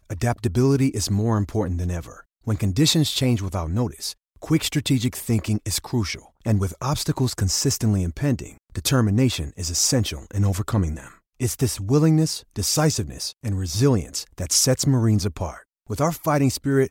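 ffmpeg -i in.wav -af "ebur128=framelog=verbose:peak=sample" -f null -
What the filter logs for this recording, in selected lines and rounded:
Integrated loudness:
  I:         -22.4 LUFS
  Threshold: -32.6 LUFS
Loudness range:
  LRA:         2.3 LU
  Threshold: -42.7 LUFS
  LRA low:   -23.9 LUFS
  LRA high:  -21.6 LUFS
Sample peak:
  Peak:       -6.7 dBFS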